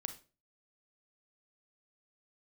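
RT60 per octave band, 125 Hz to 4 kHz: 0.45 s, 0.40 s, 0.40 s, 0.30 s, 0.30 s, 0.30 s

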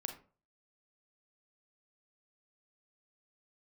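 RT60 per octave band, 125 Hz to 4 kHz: 0.50 s, 0.40 s, 0.40 s, 0.40 s, 0.30 s, 0.20 s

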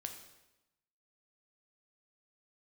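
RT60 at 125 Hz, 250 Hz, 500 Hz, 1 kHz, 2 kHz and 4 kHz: 1.1 s, 1.0 s, 1.0 s, 0.95 s, 0.90 s, 0.85 s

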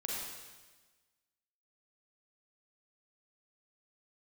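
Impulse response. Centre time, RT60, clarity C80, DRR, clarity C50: 96 ms, 1.3 s, 0.5 dB, -4.0 dB, -2.0 dB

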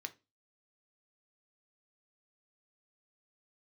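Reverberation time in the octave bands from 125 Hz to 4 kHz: 0.35 s, 0.35 s, 0.30 s, 0.25 s, 0.25 s, 0.25 s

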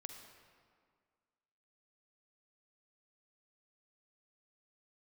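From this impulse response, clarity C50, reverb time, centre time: 5.0 dB, 1.9 s, 44 ms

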